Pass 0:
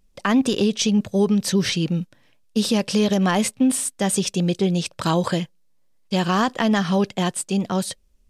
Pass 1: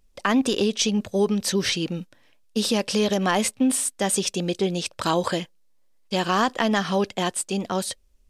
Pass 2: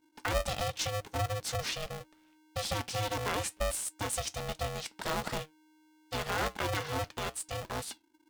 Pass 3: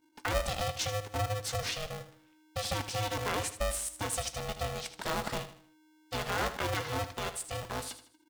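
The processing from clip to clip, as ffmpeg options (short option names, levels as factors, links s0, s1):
-af "equalizer=f=150:t=o:w=0.98:g=-9.5"
-af "flanger=delay=5.8:depth=2.3:regen=75:speed=1.3:shape=triangular,aeval=exprs='val(0)*sgn(sin(2*PI*310*n/s))':c=same,volume=0.473"
-af "aecho=1:1:78|156|234|312:0.251|0.0955|0.0363|0.0138"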